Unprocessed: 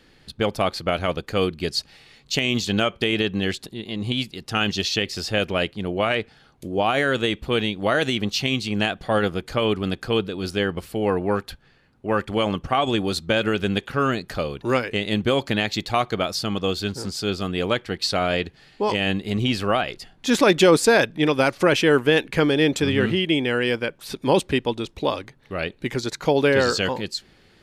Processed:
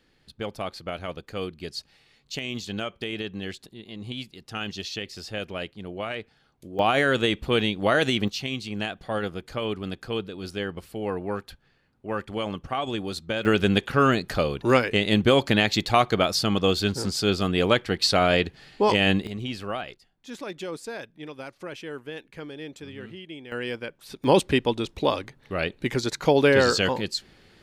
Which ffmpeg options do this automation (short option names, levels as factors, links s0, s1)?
-af "asetnsamples=n=441:p=0,asendcmd='6.79 volume volume -0.5dB;8.28 volume volume -7.5dB;13.45 volume volume 2dB;19.27 volume volume -10dB;19.94 volume volume -19.5dB;23.52 volume volume -9dB;24.24 volume volume 0dB',volume=0.316"